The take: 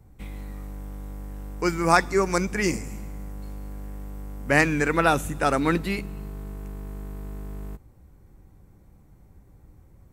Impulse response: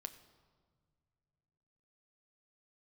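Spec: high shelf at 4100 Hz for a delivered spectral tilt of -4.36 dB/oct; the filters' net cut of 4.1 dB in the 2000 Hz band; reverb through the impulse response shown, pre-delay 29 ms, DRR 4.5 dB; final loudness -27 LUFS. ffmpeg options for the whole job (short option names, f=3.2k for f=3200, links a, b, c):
-filter_complex "[0:a]equalizer=f=2k:t=o:g=-7,highshelf=f=4.1k:g=8,asplit=2[a][b];[1:a]atrim=start_sample=2205,adelay=29[c];[b][c]afir=irnorm=-1:irlink=0,volume=-0.5dB[d];[a][d]amix=inputs=2:normalize=0,volume=-4dB"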